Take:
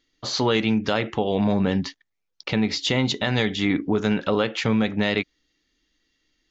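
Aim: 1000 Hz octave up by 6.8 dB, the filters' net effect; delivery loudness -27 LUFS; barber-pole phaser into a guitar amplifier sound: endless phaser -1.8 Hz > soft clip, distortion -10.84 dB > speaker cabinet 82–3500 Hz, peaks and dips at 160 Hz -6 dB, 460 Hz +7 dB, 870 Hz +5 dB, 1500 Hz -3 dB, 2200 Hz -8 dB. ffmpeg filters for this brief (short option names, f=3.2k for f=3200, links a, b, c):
-filter_complex "[0:a]equalizer=f=1k:t=o:g=5.5,asplit=2[a][b];[b]afreqshift=-1.8[c];[a][c]amix=inputs=2:normalize=1,asoftclip=threshold=-22dB,highpass=82,equalizer=f=160:t=q:w=4:g=-6,equalizer=f=460:t=q:w=4:g=7,equalizer=f=870:t=q:w=4:g=5,equalizer=f=1.5k:t=q:w=4:g=-3,equalizer=f=2.2k:t=q:w=4:g=-8,lowpass=f=3.5k:w=0.5412,lowpass=f=3.5k:w=1.3066,volume=1dB"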